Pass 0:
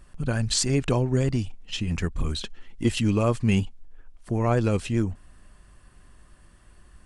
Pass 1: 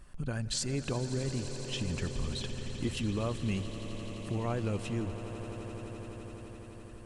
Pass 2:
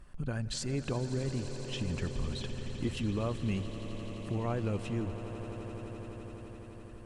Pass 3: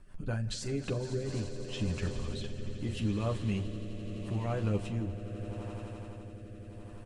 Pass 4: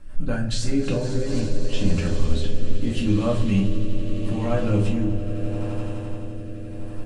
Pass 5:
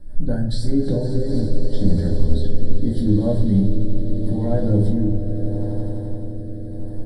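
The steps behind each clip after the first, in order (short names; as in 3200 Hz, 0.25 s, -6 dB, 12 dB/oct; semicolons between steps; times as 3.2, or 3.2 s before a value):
compressor 2:1, threshold -34 dBFS, peak gain reduction 9.5 dB; on a send: swelling echo 85 ms, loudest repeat 8, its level -16 dB; on the sum: gain -2.5 dB
high shelf 3700 Hz -6.5 dB
early reflections 10 ms -4 dB, 44 ms -12.5 dB; rotary speaker horn 5.5 Hz, later 0.8 Hz, at 0.8
shoebox room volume 280 m³, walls furnished, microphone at 2.2 m; gain +6 dB
Butterworth band-stop 2600 Hz, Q 0.92; fixed phaser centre 2900 Hz, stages 4; gain +4 dB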